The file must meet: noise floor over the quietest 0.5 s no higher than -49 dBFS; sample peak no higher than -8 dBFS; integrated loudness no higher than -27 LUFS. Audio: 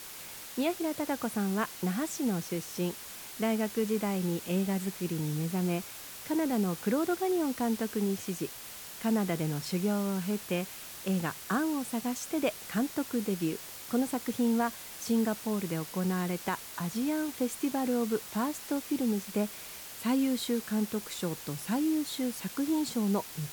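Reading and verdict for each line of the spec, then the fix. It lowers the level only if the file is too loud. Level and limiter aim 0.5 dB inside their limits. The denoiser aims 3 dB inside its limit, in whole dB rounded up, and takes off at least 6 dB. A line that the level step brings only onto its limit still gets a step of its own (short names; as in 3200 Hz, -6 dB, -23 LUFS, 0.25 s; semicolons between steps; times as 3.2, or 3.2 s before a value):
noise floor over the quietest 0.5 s -45 dBFS: fail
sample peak -17.0 dBFS: OK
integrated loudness -32.0 LUFS: OK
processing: denoiser 7 dB, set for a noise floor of -45 dBFS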